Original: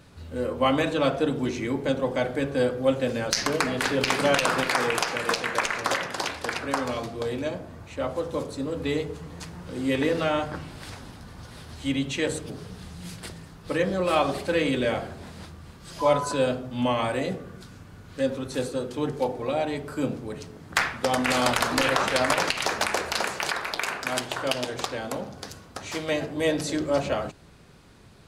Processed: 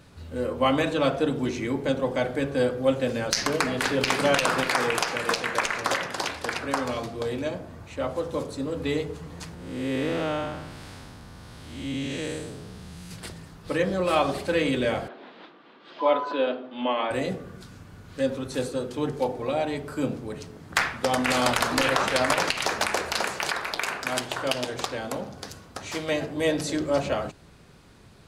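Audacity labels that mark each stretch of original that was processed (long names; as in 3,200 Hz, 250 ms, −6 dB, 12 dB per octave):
9.540000	13.110000	spectrum smeared in time width 255 ms
15.080000	17.110000	elliptic band-pass filter 280–3,500 Hz, stop band 60 dB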